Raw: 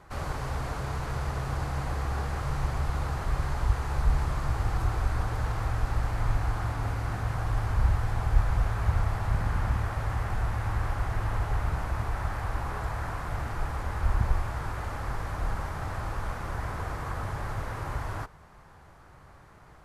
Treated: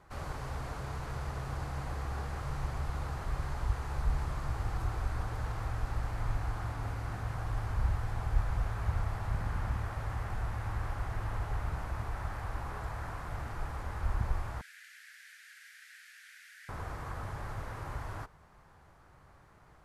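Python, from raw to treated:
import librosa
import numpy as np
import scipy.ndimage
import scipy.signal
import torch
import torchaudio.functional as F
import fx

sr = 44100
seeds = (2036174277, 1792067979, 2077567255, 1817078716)

y = fx.steep_highpass(x, sr, hz=1600.0, slope=72, at=(14.61, 16.69))
y = F.gain(torch.from_numpy(y), -6.5).numpy()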